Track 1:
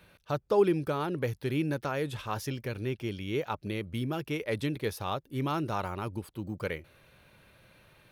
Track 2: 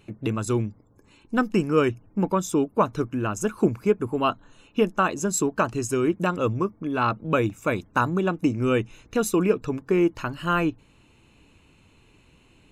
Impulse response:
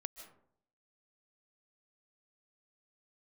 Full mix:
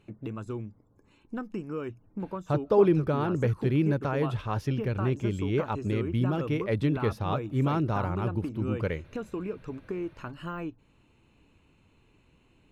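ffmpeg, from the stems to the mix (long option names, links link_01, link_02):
-filter_complex "[0:a]lowshelf=frequency=190:gain=8.5,adelay=2200,volume=1.5dB,asplit=2[link_01][link_02];[link_02]volume=-24dB[link_03];[1:a]deesser=1,highshelf=frequency=7400:gain=9,acompressor=threshold=-29dB:ratio=2.5,volume=-5.5dB[link_04];[2:a]atrim=start_sample=2205[link_05];[link_03][link_05]afir=irnorm=-1:irlink=0[link_06];[link_01][link_04][link_06]amix=inputs=3:normalize=0,aemphasis=mode=reproduction:type=75kf"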